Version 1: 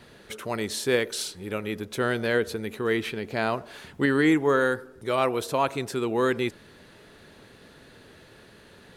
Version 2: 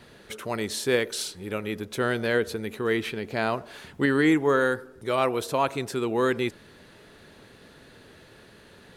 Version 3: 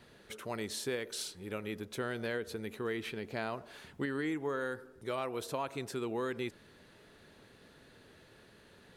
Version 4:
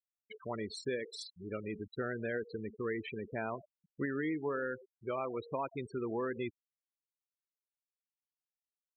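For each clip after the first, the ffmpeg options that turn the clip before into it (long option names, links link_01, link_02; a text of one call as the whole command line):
ffmpeg -i in.wav -af anull out.wav
ffmpeg -i in.wav -af "acompressor=threshold=-24dB:ratio=6,volume=-8dB" out.wav
ffmpeg -i in.wav -af "afftfilt=real='re*gte(hypot(re,im),0.02)':imag='im*gte(hypot(re,im),0.02)':win_size=1024:overlap=0.75" out.wav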